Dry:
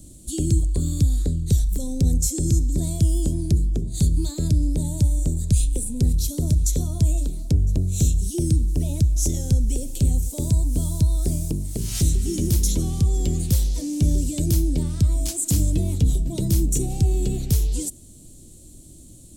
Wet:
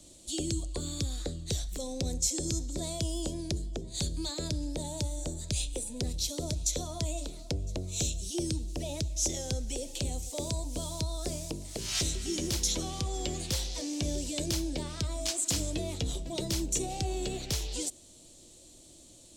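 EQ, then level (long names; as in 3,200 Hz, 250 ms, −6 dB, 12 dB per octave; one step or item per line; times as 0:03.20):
three-way crossover with the lows and the highs turned down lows −20 dB, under 460 Hz, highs −18 dB, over 6,200 Hz
notch filter 420 Hz, Q 12
+4.0 dB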